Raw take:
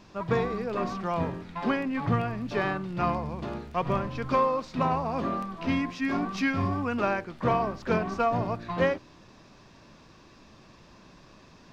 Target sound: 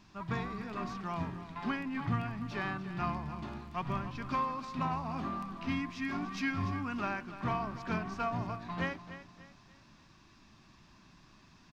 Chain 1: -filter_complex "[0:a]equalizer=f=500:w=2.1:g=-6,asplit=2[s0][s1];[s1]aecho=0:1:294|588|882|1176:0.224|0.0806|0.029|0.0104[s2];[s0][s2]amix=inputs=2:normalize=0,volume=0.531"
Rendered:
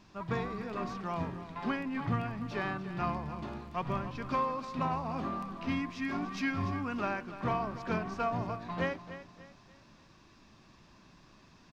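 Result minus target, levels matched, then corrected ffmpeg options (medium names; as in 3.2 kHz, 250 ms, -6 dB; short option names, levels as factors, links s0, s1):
500 Hz band +3.5 dB
-filter_complex "[0:a]equalizer=f=500:w=2.1:g=-14.5,asplit=2[s0][s1];[s1]aecho=0:1:294|588|882|1176:0.224|0.0806|0.029|0.0104[s2];[s0][s2]amix=inputs=2:normalize=0,volume=0.531"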